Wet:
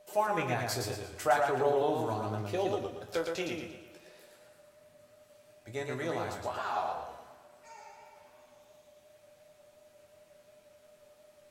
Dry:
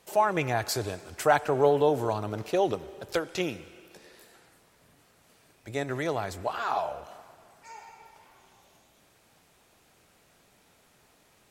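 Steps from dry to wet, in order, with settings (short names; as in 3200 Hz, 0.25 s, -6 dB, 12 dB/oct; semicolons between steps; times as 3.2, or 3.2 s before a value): whine 600 Hz -48 dBFS; resonator bank E2 major, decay 0.23 s; warbling echo 0.115 s, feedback 40%, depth 77 cents, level -4 dB; gain +4.5 dB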